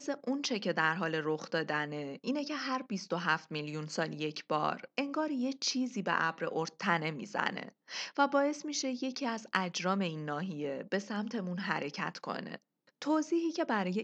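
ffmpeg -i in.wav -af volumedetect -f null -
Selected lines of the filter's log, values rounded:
mean_volume: -34.6 dB
max_volume: -13.1 dB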